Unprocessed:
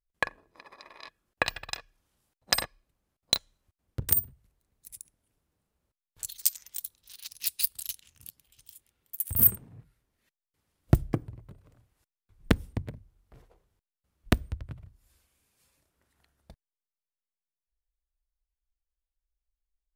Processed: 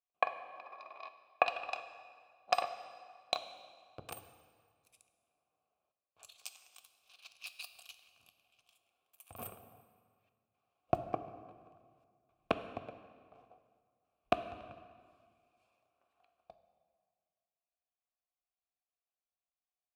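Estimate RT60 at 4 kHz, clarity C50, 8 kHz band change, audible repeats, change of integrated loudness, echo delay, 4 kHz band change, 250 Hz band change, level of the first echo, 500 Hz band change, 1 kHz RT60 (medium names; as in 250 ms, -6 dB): 1.5 s, 11.0 dB, -21.0 dB, no echo, -11.5 dB, no echo, -12.0 dB, -13.5 dB, no echo, 0.0 dB, 1.9 s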